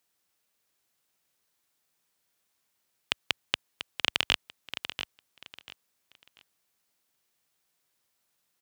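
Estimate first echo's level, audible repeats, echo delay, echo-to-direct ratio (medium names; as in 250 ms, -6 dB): -10.0 dB, 3, 690 ms, -9.5 dB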